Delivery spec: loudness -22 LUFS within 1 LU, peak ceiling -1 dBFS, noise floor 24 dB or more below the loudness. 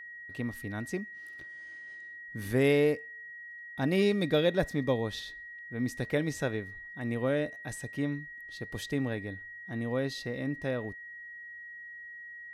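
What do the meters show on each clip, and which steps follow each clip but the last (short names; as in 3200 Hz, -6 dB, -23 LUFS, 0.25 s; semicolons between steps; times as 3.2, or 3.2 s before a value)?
steady tone 1900 Hz; tone level -43 dBFS; loudness -32.0 LUFS; peak -14.0 dBFS; loudness target -22.0 LUFS
-> notch 1900 Hz, Q 30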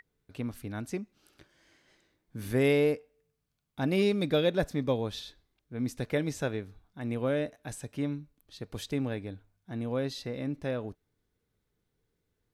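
steady tone none; loudness -32.0 LUFS; peak -14.5 dBFS; loudness target -22.0 LUFS
-> gain +10 dB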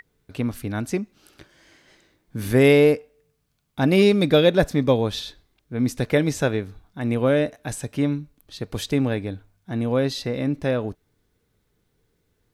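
loudness -22.0 LUFS; peak -4.5 dBFS; noise floor -71 dBFS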